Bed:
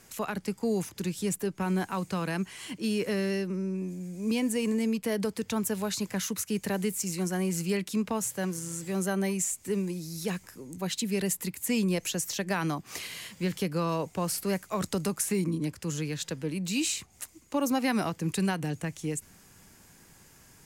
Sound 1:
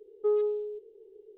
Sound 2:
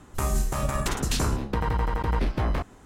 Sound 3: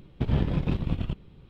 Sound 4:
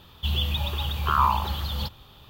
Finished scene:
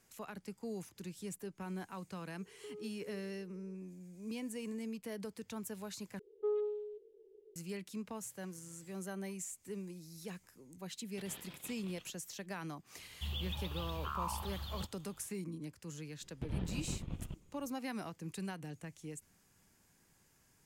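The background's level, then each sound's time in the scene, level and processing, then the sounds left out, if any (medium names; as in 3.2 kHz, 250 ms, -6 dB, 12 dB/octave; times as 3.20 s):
bed -14 dB
2.40 s: add 1 -10 dB + compression, threshold -38 dBFS
6.19 s: replace with 1 -8.5 dB
10.97 s: add 3 -1 dB + differentiator
12.98 s: add 4 -14 dB + peak limiter -15.5 dBFS
16.21 s: add 3 -14.5 dB
not used: 2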